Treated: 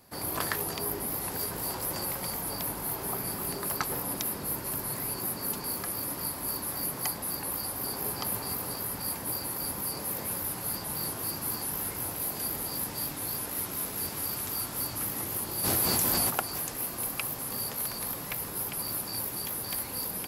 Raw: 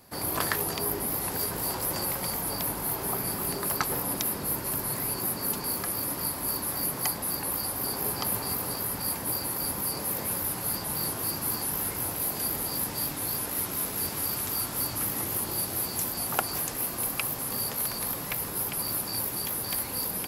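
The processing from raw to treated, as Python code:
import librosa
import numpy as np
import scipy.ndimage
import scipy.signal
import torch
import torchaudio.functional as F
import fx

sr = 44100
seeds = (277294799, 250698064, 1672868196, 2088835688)

y = fx.env_flatten(x, sr, amount_pct=100, at=(15.63, 16.29), fade=0.02)
y = y * 10.0 ** (-3.0 / 20.0)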